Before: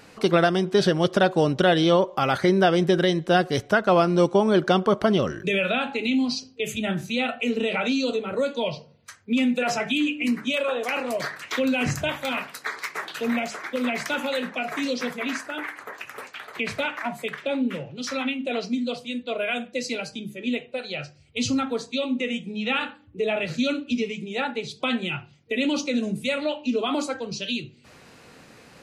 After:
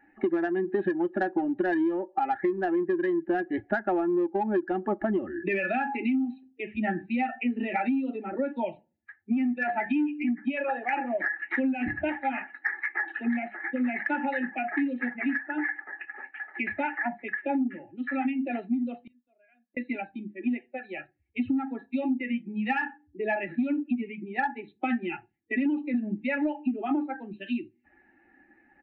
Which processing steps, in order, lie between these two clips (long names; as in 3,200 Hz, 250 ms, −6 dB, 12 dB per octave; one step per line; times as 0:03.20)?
spectral dynamics exaggerated over time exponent 1.5
phaser with its sweep stopped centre 690 Hz, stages 8
hollow resonant body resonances 340/820/1,700 Hz, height 18 dB, ringing for 40 ms
0:19.01–0:19.77: gate with flip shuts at −39 dBFS, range −36 dB
on a send at −22 dB: convolution reverb, pre-delay 5 ms
on the sum: downsampling to 8,000 Hz
in parallel at −5 dB: soft clipping −14 dBFS, distortion −8 dB
on the sum: downward compressor 16 to 1, threshold −22 dBFS, peak gain reduction 20.5 dB
level −1.5 dB